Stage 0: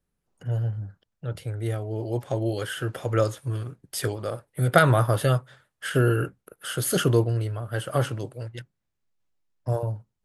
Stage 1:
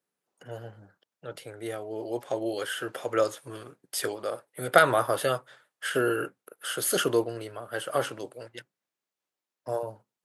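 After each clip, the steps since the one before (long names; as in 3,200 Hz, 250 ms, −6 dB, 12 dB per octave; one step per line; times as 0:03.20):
high-pass filter 350 Hz 12 dB per octave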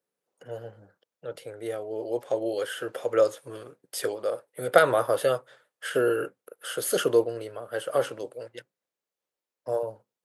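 parametric band 500 Hz +8.5 dB 0.57 octaves
level −2.5 dB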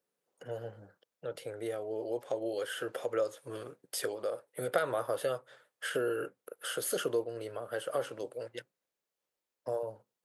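downward compressor 2 to 1, threshold −36 dBFS, peak gain reduction 13.5 dB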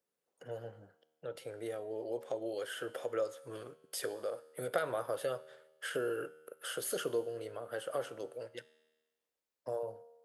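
tuned comb filter 78 Hz, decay 1.2 s, harmonics all, mix 50%
level +2 dB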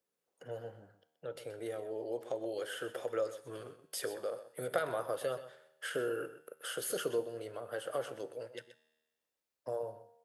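single-tap delay 127 ms −13 dB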